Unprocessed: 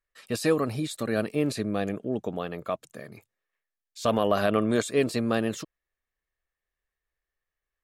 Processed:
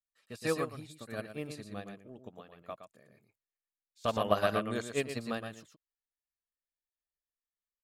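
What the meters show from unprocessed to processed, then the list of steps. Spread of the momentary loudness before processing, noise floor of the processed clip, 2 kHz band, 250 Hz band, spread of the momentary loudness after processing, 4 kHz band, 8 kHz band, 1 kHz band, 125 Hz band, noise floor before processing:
12 LU, under -85 dBFS, -6.0 dB, -12.0 dB, 21 LU, -6.5 dB, -9.5 dB, -5.0 dB, -9.5 dB, under -85 dBFS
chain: dynamic bell 330 Hz, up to -6 dB, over -36 dBFS, Q 0.73; delay 117 ms -4 dB; upward expansion 2.5:1, over -35 dBFS

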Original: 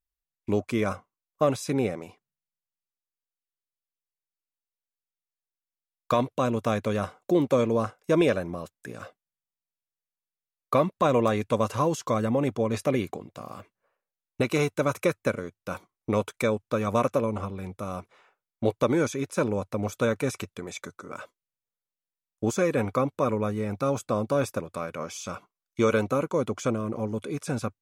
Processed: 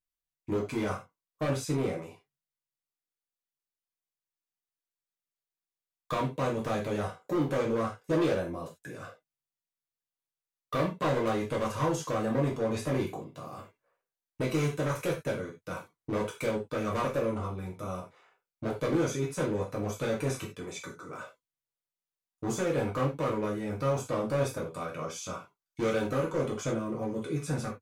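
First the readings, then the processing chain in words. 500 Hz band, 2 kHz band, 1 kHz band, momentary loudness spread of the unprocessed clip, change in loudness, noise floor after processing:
-5.0 dB, -4.0 dB, -5.0 dB, 15 LU, -4.5 dB, under -85 dBFS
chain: hard clipper -22 dBFS, distortion -9 dB; gated-style reverb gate 120 ms falling, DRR -3.5 dB; trim -7.5 dB

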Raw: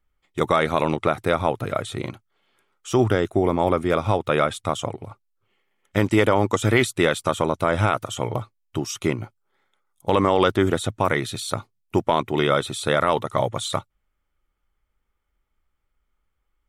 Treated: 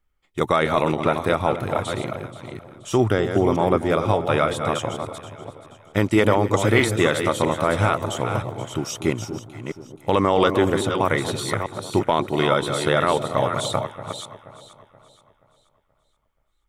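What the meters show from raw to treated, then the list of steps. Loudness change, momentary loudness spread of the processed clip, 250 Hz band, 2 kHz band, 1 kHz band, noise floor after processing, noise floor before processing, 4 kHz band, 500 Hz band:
+1.0 dB, 15 LU, +1.0 dB, +1.0 dB, +1.0 dB, -67 dBFS, -75 dBFS, +1.0 dB, +1.0 dB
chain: chunks repeated in reverse 324 ms, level -7 dB; echo whose repeats swap between lows and highs 239 ms, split 910 Hz, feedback 62%, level -11 dB

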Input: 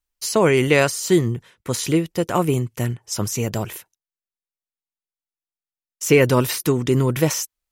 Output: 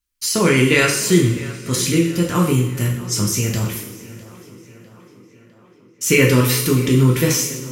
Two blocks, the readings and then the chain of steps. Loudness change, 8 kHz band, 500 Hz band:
+3.0 dB, +6.0 dB, -0.5 dB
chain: peaking EQ 700 Hz -13.5 dB 1.2 oct; tape echo 653 ms, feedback 69%, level -17.5 dB, low-pass 3.7 kHz; two-slope reverb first 0.6 s, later 3.1 s, from -19 dB, DRR -2 dB; trim +2.5 dB

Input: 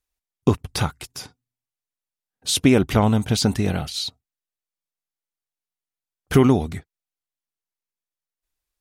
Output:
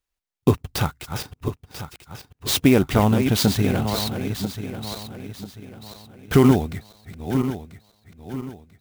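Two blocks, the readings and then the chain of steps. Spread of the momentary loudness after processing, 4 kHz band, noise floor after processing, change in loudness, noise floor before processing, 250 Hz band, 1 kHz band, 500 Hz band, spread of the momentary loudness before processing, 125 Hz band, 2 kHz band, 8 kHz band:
21 LU, 0.0 dB, -81 dBFS, -1.0 dB, under -85 dBFS, +1.0 dB, +1.0 dB, +1.0 dB, 17 LU, +1.0 dB, +1.0 dB, -1.0 dB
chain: backward echo that repeats 495 ms, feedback 59%, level -7.5 dB; sampling jitter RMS 0.023 ms

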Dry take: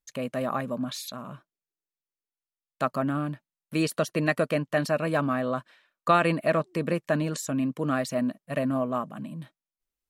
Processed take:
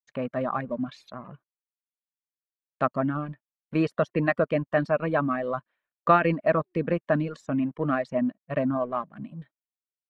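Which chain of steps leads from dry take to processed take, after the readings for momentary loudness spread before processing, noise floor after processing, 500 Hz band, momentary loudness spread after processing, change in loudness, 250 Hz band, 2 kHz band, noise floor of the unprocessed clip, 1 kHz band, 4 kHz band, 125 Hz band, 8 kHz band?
12 LU, under -85 dBFS, +1.5 dB, 12 LU, +1.0 dB, +0.5 dB, 0.0 dB, under -85 dBFS, +1.5 dB, -9.5 dB, 0.0 dB, under -20 dB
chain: companding laws mixed up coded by A; low-pass 2 kHz 12 dB/octave; reverb removal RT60 0.97 s; trim +3 dB

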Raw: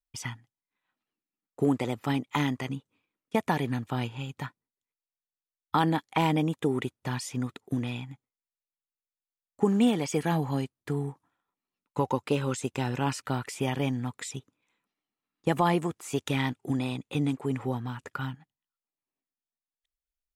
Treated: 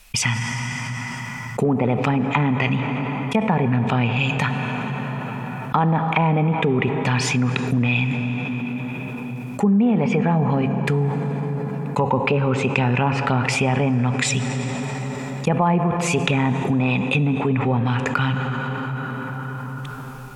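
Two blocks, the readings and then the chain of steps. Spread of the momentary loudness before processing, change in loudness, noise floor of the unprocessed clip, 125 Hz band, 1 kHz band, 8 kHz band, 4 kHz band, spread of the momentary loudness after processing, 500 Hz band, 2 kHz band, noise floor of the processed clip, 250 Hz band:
12 LU, +8.5 dB, under -85 dBFS, +12.5 dB, +9.0 dB, +11.0 dB, +9.5 dB, 10 LU, +8.5 dB, +13.5 dB, -31 dBFS, +9.0 dB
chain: low-pass that closes with the level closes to 1.1 kHz, closed at -23.5 dBFS; graphic EQ with 31 bands 200 Hz +7 dB, 315 Hz -12 dB, 2.5 kHz +11 dB; plate-style reverb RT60 3.5 s, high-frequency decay 0.65×, DRR 12 dB; level flattener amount 70%; trim +2.5 dB

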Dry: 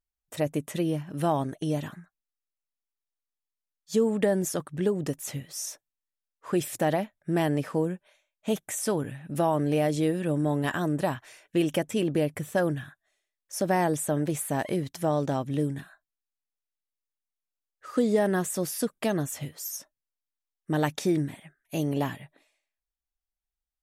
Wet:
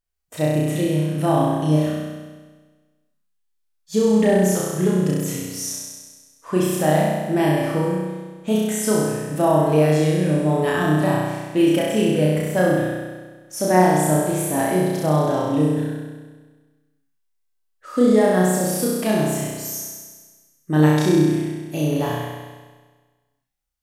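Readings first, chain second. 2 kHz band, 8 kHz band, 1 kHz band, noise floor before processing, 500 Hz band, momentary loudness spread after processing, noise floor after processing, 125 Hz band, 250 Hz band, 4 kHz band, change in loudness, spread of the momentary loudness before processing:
+8.0 dB, +7.5 dB, +8.5 dB, under -85 dBFS, +8.5 dB, 13 LU, -69 dBFS, +10.0 dB, +9.0 dB, +8.0 dB, +8.5 dB, 10 LU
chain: flutter echo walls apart 5.6 m, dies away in 1.4 s; harmonic-percussive split harmonic +5 dB; trim -1 dB

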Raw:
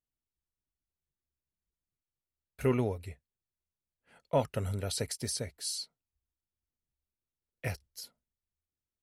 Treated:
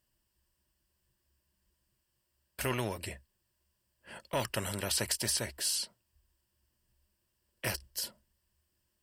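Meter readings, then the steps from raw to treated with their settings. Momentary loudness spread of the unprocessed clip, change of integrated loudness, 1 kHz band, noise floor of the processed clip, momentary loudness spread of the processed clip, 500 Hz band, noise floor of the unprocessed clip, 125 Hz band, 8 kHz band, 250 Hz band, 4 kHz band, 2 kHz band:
16 LU, 0.0 dB, 0.0 dB, -80 dBFS, 15 LU, -5.0 dB, under -85 dBFS, -5.0 dB, +5.5 dB, -4.5 dB, +5.0 dB, +6.5 dB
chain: Chebyshev shaper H 6 -42 dB, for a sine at -16 dBFS; rippled EQ curve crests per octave 1.3, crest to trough 9 dB; spectrum-flattening compressor 2:1; trim -1.5 dB

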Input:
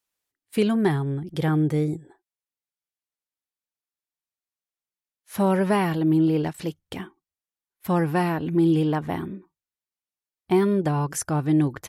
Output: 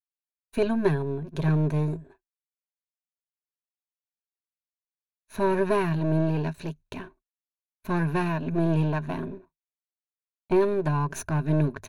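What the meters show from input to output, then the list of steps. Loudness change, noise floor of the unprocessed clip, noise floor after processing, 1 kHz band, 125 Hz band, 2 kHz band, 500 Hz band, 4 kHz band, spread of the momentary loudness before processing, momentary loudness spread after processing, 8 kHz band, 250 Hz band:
-3.0 dB, under -85 dBFS, under -85 dBFS, -3.0 dB, -0.5 dB, -1.5 dB, -1.0 dB, -6.5 dB, 16 LU, 14 LU, no reading, -5.5 dB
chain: partial rectifier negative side -12 dB; rippled EQ curve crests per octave 1.5, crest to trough 11 dB; expander -49 dBFS; treble shelf 5.3 kHz -10 dB

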